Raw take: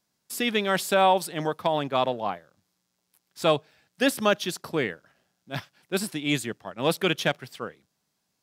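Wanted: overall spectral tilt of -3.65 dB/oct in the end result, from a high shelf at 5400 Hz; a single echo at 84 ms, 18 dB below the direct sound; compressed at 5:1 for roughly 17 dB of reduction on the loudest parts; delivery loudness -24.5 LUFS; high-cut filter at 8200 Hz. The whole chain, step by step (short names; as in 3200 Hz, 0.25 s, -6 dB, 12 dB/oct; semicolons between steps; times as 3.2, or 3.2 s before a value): LPF 8200 Hz; high shelf 5400 Hz +3.5 dB; compressor 5:1, threshold -36 dBFS; echo 84 ms -18 dB; gain +15.5 dB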